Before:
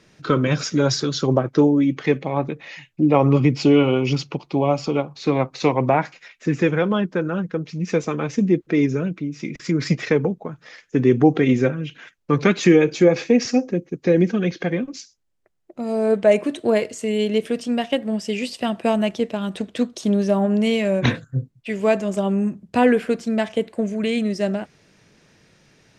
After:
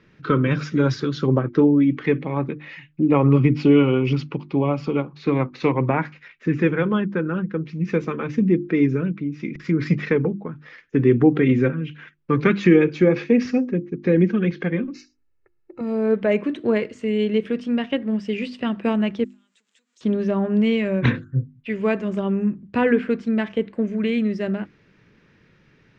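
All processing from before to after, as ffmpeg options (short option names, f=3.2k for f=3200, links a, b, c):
-filter_complex "[0:a]asettb=1/sr,asplit=3[a][b][c];[a]atrim=end=14.944[d];[b]atrim=start=14.94:end=15.81,asetpts=PTS-STARTPTS,afade=t=in:d=0.004:c=qsin,afade=t=out:st=0.866:d=0.004:c=qsin,asuperstop=centerf=3300:order=8:qfactor=5.2,aecho=1:1:2.3:0.93,atrim=end_sample=38367[e];[c]atrim=start=15.806[f];[d][e]acrossfade=d=0.004:c1=hsin:c2=qsin[g];[g][f]acrossfade=d=0.004:c1=qsin:c2=hsin,asettb=1/sr,asplit=3[h][i][j];[h]atrim=end=19.244[k];[i]atrim=start=19.24:end=20.01,asetpts=PTS-STARTPTS,afade=t=in:d=0.004:c=qsin,afade=t=out:st=0.766:d=0.004:c=qsin,aeval=exprs='val(0)+0.5*0.0266*sgn(val(0))':c=same,acompressor=threshold=-24dB:ratio=5:attack=3.2:release=140:knee=1:detection=peak,bandpass=f=7.4k:t=q:w=6.8[l];[j]atrim=start=20.006[m];[k][l]acrossfade=d=0.004:c1=hsin:c2=qsin[n];[n][m]acrossfade=d=0.004:c1=qsin:c2=hsin,lowpass=2.3k,equalizer=f=690:t=o:w=0.78:g=-11,bandreject=f=50:t=h:w=6,bandreject=f=100:t=h:w=6,bandreject=f=150:t=h:w=6,bandreject=f=200:t=h:w=6,bandreject=f=250:t=h:w=6,bandreject=f=300:t=h:w=6,bandreject=f=350:t=h:w=6,volume=2dB"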